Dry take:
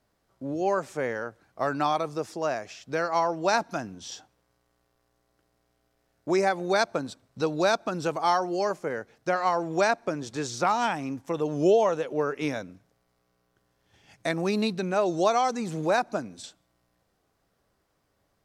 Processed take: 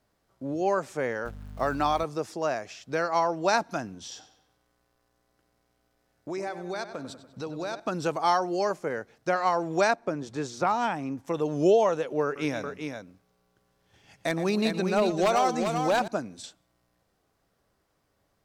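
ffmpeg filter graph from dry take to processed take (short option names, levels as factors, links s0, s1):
-filter_complex "[0:a]asettb=1/sr,asplit=3[s0][s1][s2];[s0]atrim=end=1.254[s3];[s1]atrim=start=1.25:end=2.04,asetpts=PTS-STARTPTS,afade=t=in:d=0.004:c=qsin,afade=t=out:st=0.786:d=0.004:c=qsin,aeval=exprs='val(0)+0.01*(sin(2*PI*50*n/s)+sin(2*PI*2*50*n/s)/2+sin(2*PI*3*50*n/s)/3+sin(2*PI*4*50*n/s)/4+sin(2*PI*5*50*n/s)/5)':c=same,aeval=exprs='val(0)*gte(abs(val(0)),0.00473)':c=same[s4];[s2]atrim=start=2.036[s5];[s3][s4]acrossfade=d=0.004:c1=hsin:c2=qsin[s6];[s6][s5]acrossfade=d=0.004:c1=qsin:c2=hsin,asettb=1/sr,asplit=3[s7][s8][s9];[s7]atrim=end=4.064[s10];[s8]atrim=start=4.06:end=7.8,asetpts=PTS-STARTPTS,afade=t=in:d=0.004:c=qsin,afade=t=out:st=3.736:d=0.004:c=qsin,acompressor=threshold=0.0126:ratio=2:attack=3.2:release=140:knee=1:detection=peak,asplit=2[s11][s12];[s12]adelay=96,lowpass=f=4300:p=1,volume=0.282,asplit=2[s13][s14];[s14]adelay=96,lowpass=f=4300:p=1,volume=0.55,asplit=2[s15][s16];[s16]adelay=96,lowpass=f=4300:p=1,volume=0.55,asplit=2[s17][s18];[s18]adelay=96,lowpass=f=4300:p=1,volume=0.55,asplit=2[s19][s20];[s20]adelay=96,lowpass=f=4300:p=1,volume=0.55,asplit=2[s21][s22];[s22]adelay=96,lowpass=f=4300:p=1,volume=0.55[s23];[s11][s13][s15][s17][s19][s21][s23]amix=inputs=7:normalize=0,atrim=end_sample=164934[s24];[s9]atrim=start=7.796[s25];[s10][s24]acrossfade=d=0.004:c1=hsin:c2=qsin[s26];[s26][s25]acrossfade=d=0.004:c1=qsin:c2=hsin,asettb=1/sr,asplit=3[s27][s28][s29];[s27]atrim=end=9.954[s30];[s28]atrim=start=9.95:end=11.19,asetpts=PTS-STARTPTS,afade=t=in:d=0.004:c=qsin,afade=t=out:st=1.236:d=0.004:c=qsin,highshelf=f=2100:g=-7,bandreject=f=60:t=h:w=6,bandreject=f=120:t=h:w=6[s31];[s29]atrim=start=11.186[s32];[s30][s31]acrossfade=d=0.004:c1=hsin:c2=qsin[s33];[s33][s32]acrossfade=d=0.004:c1=qsin:c2=hsin,asettb=1/sr,asplit=3[s34][s35][s36];[s34]atrim=end=12.244[s37];[s35]atrim=start=12.24:end=16.08,asetpts=PTS-STARTPTS,afade=t=in:d=0.004:c=qsin,afade=t=out:st=3.836:d=0.004:c=qsin,aeval=exprs='0.158*(abs(mod(val(0)/0.158+3,4)-2)-1)':c=same,aecho=1:1:117|395:0.188|0.501,atrim=end_sample=169344[s38];[s36]atrim=start=16.076[s39];[s37][s38]acrossfade=d=0.004:c1=hsin:c2=qsin[s40];[s40][s39]acrossfade=d=0.004:c1=qsin:c2=hsin"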